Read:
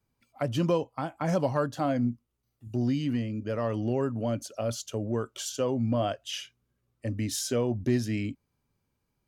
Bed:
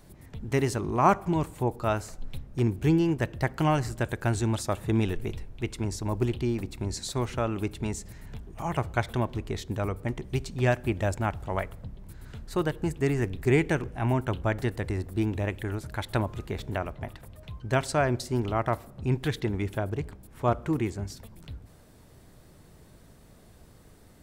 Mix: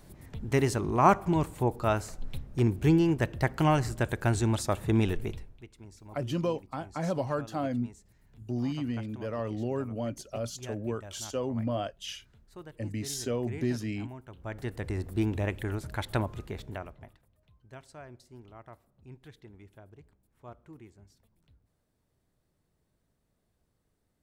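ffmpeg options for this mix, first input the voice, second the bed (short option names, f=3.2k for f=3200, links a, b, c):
-filter_complex "[0:a]adelay=5750,volume=-4dB[a];[1:a]volume=18dB,afade=t=out:st=5.17:d=0.48:silence=0.112202,afade=t=in:st=14.34:d=0.75:silence=0.125893,afade=t=out:st=16.03:d=1.22:silence=0.0841395[b];[a][b]amix=inputs=2:normalize=0"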